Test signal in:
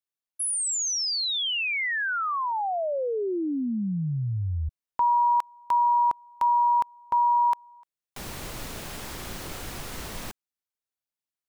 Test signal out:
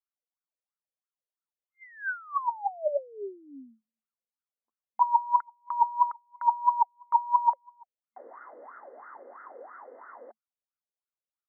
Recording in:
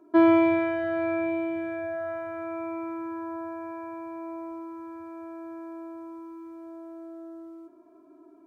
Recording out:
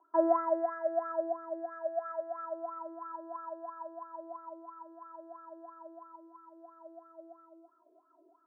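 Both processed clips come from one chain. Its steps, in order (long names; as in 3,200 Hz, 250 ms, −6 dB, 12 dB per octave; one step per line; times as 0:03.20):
LFO wah 3 Hz 480–1,400 Hz, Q 11
brick-wall band-pass 220–2,100 Hz
level +7 dB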